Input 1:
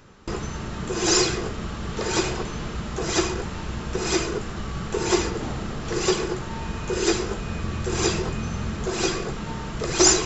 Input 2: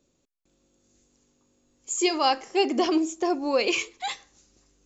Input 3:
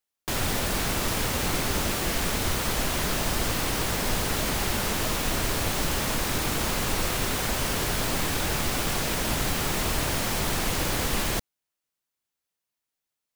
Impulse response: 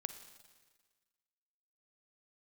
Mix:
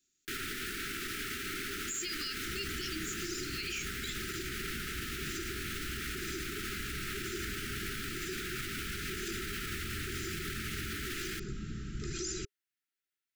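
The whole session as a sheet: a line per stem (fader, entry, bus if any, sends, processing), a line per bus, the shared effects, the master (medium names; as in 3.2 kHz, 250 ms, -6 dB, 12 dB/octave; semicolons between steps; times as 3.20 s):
-13.5 dB, 2.20 s, bus A, no send, bass shelf 320 Hz +7.5 dB
-11.5 dB, 0.00 s, no bus, no send, tilt shelf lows -8 dB
-1.0 dB, 0.00 s, bus A, no send, tone controls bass -14 dB, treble -11 dB
bus A: 0.0 dB, band-stop 1 kHz, Q 11; peak limiter -27.5 dBFS, peak gain reduction 11.5 dB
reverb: none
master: Chebyshev band-stop 410–1300 Hz, order 5; treble shelf 5.4 kHz +4.5 dB; peak limiter -28 dBFS, peak gain reduction 9.5 dB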